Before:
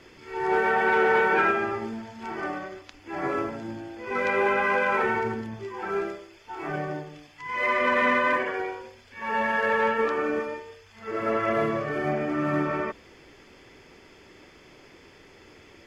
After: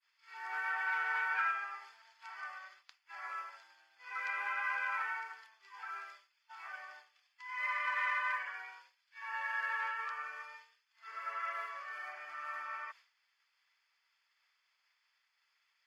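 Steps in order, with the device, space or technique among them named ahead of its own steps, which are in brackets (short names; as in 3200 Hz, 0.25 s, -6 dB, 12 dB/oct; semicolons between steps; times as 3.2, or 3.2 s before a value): dynamic EQ 3900 Hz, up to -7 dB, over -50 dBFS, Q 2.1; headphones lying on a table (HPF 1100 Hz 24 dB/oct; bell 4500 Hz +8.5 dB 0.54 oct); expander -44 dBFS; bell 5800 Hz -5 dB 2.3 oct; gain -7.5 dB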